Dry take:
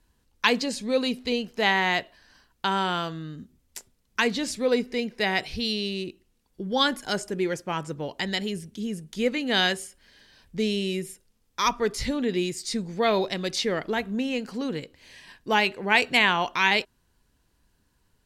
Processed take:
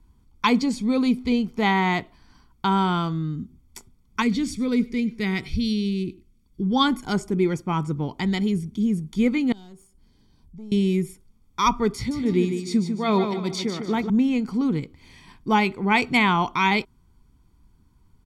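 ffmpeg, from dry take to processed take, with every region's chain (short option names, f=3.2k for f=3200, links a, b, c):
-filter_complex "[0:a]asettb=1/sr,asplit=3[a][b][c];[a]atrim=end=4.224[d];[b]atrim=start=4.22:end=6.62,asetpts=PTS-STARTPTS,afade=t=in:d=0.004:c=qsin,afade=t=out:st=2.396:d=0.004:c=qsin,equalizer=f=790:t=o:w=1.1:g=-13.5,aecho=1:1:99:0.0891,atrim=end_sample=105840[e];[c]atrim=start=6.616[f];[d][e]acrossfade=d=0.004:c1=hsin:c2=qsin[g];[g][f]acrossfade=d=0.004:c1=qsin:c2=hsin,asettb=1/sr,asplit=3[h][i][j];[h]atrim=end=9.524[k];[i]atrim=start=9.52:end=10.72,asetpts=PTS-STARTPTS,afade=t=in:d=0.004:c=qsin,afade=t=out:st=1.196:d=0.004:c=qsin,equalizer=f=2k:t=o:w=2.3:g=-12.5,acompressor=threshold=-55dB:ratio=2:attack=3.2:release=140:knee=1:detection=peak,aeval=exprs='(tanh(63.1*val(0)+0.65)-tanh(0.65))/63.1':c=same[l];[j]atrim=start=10.716[m];[k][l]acrossfade=d=0.004:c1=hsin:c2=qsin[n];[n][m]acrossfade=d=0.004:c1=qsin:c2=hsin,asettb=1/sr,asplit=3[o][p][q];[o]atrim=end=11.964[r];[p]atrim=start=11.96:end=14.1,asetpts=PTS-STARTPTS,afade=t=in:d=0.004:c=qsin,afade=t=out:st=2.136:d=0.004:c=qsin,tremolo=f=2.5:d=0.61,highpass=100,aecho=1:1:149|298|447|596:0.447|0.165|0.0612|0.0226,atrim=end_sample=94374[s];[q]atrim=start=14.096[t];[r][s]acrossfade=d=0.004:c1=hsin:c2=qsin[u];[u][t]acrossfade=d=0.004:c1=qsin:c2=hsin,tiltshelf=f=920:g=6,aecho=1:1:0.9:0.71,volume=1dB"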